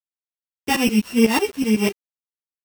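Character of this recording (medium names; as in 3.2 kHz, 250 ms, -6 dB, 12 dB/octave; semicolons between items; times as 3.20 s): a buzz of ramps at a fixed pitch in blocks of 16 samples; tremolo saw up 8 Hz, depth 95%; a quantiser's noise floor 8-bit, dither none; a shimmering, thickened sound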